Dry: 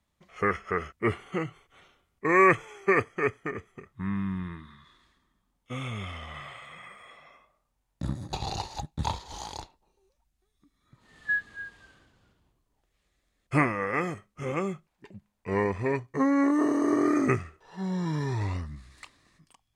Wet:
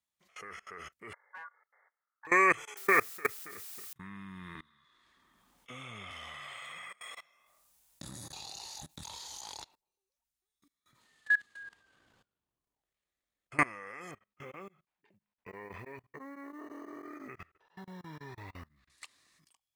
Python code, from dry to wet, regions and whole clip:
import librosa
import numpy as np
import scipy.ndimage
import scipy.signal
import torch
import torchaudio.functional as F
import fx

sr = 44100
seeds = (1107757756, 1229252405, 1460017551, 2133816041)

y = fx.chain(x, sr, fx.cheby1_lowpass(hz=890.0, order=10),
    fx.clip_hard(threshold_db=-28.5),
    fx.ring_mod(carrier_hz=1300.0), at=(1.13, 2.27))
y = fx.chain(y, sr, fx.steep_lowpass(hz=2500.0, slope=96),
    fx.peak_eq(hz=1400.0, db=5.0, octaves=0.41),
    fx.quant_dither(seeds[0], bits=8, dither='triangular'), at=(2.77, 3.93))
y = fx.chain(y, sr, fx.high_shelf(hz=3800.0, db=-10.0),
    fx.band_squash(depth_pct=70), at=(4.55, 6.11))
y = fx.chain(y, sr, fx.high_shelf(hz=4300.0, db=9.0),
    fx.over_compress(threshold_db=-35.0, ratio=-1.0),
    fx.doubler(ms=25.0, db=-9.0), at=(7.01, 9.41))
y = fx.chain(y, sr, fx.high_shelf(hz=2300.0, db=-11.0),
    fx.transient(attack_db=-1, sustain_db=-10),
    fx.sustainer(db_per_s=35.0), at=(11.63, 13.59))
y = fx.chain(y, sr, fx.lowpass(hz=2800.0, slope=12),
    fx.quant_float(bits=6),
    fx.tremolo_abs(hz=6.0), at=(14.11, 18.9))
y = fx.tilt_eq(y, sr, slope=3.0)
y = fx.level_steps(y, sr, step_db=23)